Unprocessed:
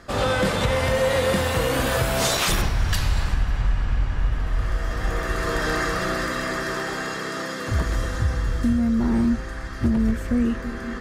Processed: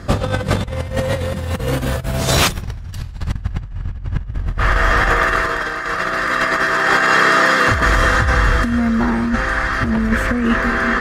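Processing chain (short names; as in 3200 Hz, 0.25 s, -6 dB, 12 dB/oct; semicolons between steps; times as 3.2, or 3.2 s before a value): bell 97 Hz +12.5 dB 2.6 oct, from 4.58 s 1500 Hz; negative-ratio compressor -20 dBFS, ratio -0.5; gain +3.5 dB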